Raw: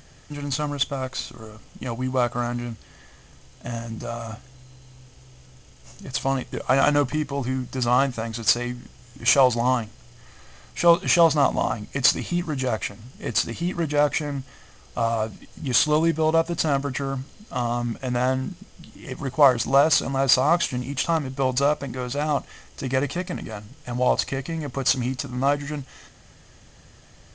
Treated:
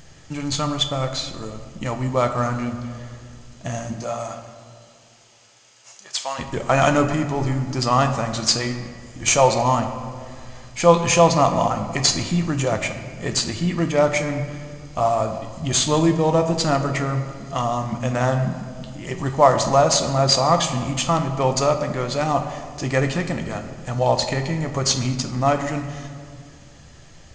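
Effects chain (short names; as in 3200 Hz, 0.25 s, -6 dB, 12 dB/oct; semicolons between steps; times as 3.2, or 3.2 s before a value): 3.92–6.38 HPF 310 Hz -> 980 Hz 12 dB/oct; reverb RT60 2.2 s, pre-delay 6 ms, DRR 5 dB; gain +2 dB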